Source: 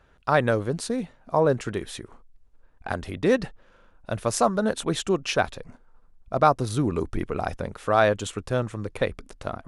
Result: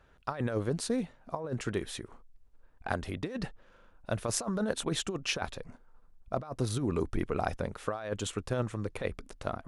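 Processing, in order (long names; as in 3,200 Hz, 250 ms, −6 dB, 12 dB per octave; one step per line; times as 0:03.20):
compressor whose output falls as the input rises −24 dBFS, ratio −0.5
level −6 dB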